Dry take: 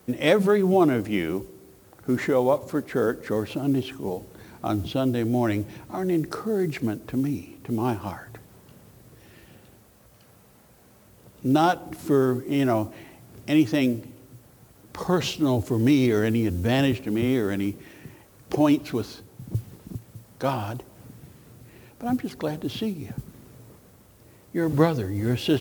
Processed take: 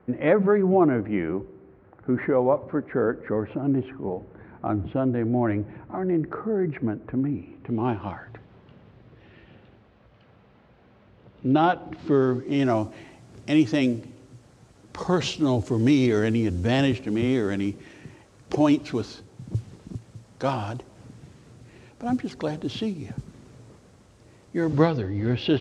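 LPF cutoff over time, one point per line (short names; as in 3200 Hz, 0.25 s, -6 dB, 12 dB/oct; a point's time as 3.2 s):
LPF 24 dB/oct
7.34 s 2000 Hz
7.98 s 3400 Hz
11.77 s 3400 Hz
12.82 s 8000 Hz
24.56 s 8000 Hz
25.02 s 4400 Hz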